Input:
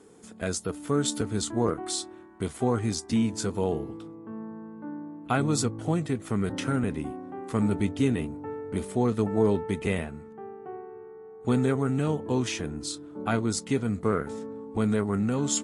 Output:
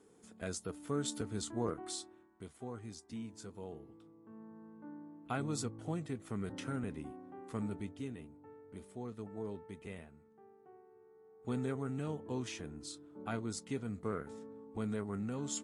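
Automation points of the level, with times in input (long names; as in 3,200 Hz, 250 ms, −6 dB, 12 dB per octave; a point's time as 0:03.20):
0:01.89 −10.5 dB
0:02.51 −19.5 dB
0:03.82 −19.5 dB
0:04.69 −12 dB
0:07.50 −12 dB
0:08.13 −19.5 dB
0:10.84 −19.5 dB
0:11.59 −12.5 dB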